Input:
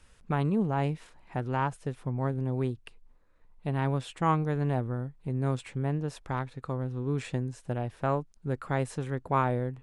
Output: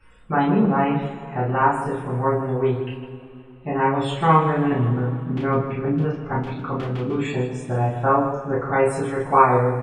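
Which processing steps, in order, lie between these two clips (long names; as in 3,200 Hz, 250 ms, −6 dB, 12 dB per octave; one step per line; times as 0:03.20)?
spectral peaks only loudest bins 64
0:04.62–0:07.14: auto-filter low-pass square 1.8 Hz → 7.4 Hz 220–2,800 Hz
loudspeakers that aren't time-aligned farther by 11 metres −2 dB, 53 metres −10 dB
coupled-rooms reverb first 0.23 s, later 2.8 s, from −20 dB, DRR −9 dB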